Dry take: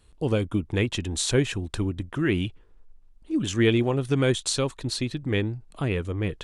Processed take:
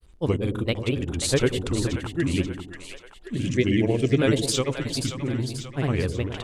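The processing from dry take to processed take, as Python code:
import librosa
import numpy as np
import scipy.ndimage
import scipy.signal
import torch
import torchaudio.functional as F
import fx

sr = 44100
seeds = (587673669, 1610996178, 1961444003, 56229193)

y = fx.granulator(x, sr, seeds[0], grain_ms=100.0, per_s=20.0, spray_ms=100.0, spread_st=3)
y = fx.spec_box(y, sr, start_s=2.13, length_s=2.05, low_hz=690.0, high_hz=1600.0, gain_db=-12)
y = fx.echo_split(y, sr, split_hz=560.0, low_ms=101, high_ms=534, feedback_pct=52, wet_db=-8.0)
y = F.gain(torch.from_numpy(y), 2.0).numpy()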